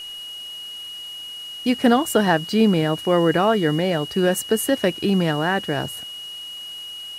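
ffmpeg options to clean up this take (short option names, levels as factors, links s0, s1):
-af "bandreject=f=2900:w=30,afwtdn=0.005"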